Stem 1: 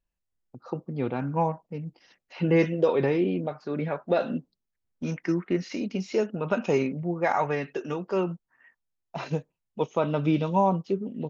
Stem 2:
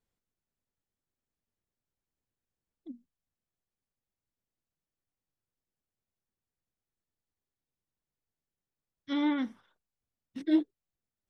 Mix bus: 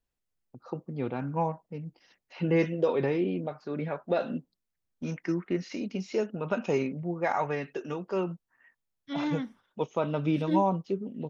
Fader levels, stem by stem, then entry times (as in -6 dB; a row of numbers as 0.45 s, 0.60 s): -3.5 dB, -3.0 dB; 0.00 s, 0.00 s